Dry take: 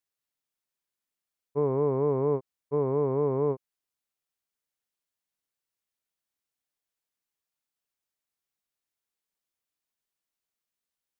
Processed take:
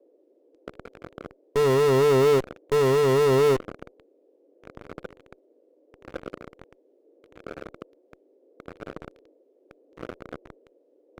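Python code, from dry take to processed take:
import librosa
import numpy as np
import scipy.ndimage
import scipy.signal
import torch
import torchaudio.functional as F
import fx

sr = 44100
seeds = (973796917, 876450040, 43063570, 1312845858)

p1 = fx.dmg_noise_band(x, sr, seeds[0], low_hz=280.0, high_hz=540.0, level_db=-55.0)
p2 = fx.filter_lfo_bandpass(p1, sr, shape='sine', hz=0.76, low_hz=850.0, high_hz=1800.0, q=0.7)
p3 = fx.fuzz(p2, sr, gain_db=57.0, gate_db=-53.0)
p4 = p2 + F.gain(torch.from_numpy(p3), -10.0).numpy()
y = fx.low_shelf(p4, sr, hz=250.0, db=9.5)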